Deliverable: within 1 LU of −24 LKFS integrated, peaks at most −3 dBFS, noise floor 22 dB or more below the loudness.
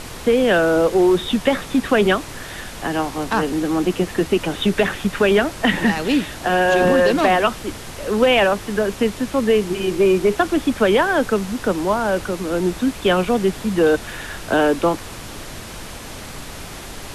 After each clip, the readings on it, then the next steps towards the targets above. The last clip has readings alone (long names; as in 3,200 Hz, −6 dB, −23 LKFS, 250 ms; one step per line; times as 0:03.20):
background noise floor −34 dBFS; target noise floor −41 dBFS; integrated loudness −18.5 LKFS; sample peak −5.0 dBFS; target loudness −24.0 LKFS
→ noise reduction from a noise print 7 dB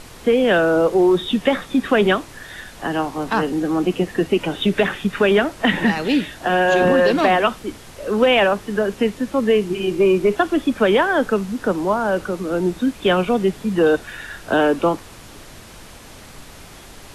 background noise floor −41 dBFS; integrated loudness −18.5 LKFS; sample peak −5.0 dBFS; target loudness −24.0 LKFS
→ level −5.5 dB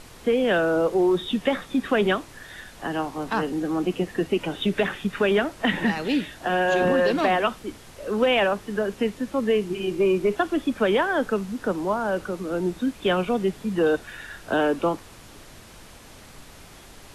integrated loudness −24.0 LKFS; sample peak −10.5 dBFS; background noise floor −47 dBFS